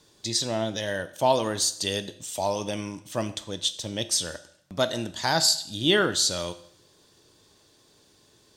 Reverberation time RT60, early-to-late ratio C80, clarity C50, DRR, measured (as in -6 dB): 0.70 s, 17.5 dB, 15.0 dB, 11.0 dB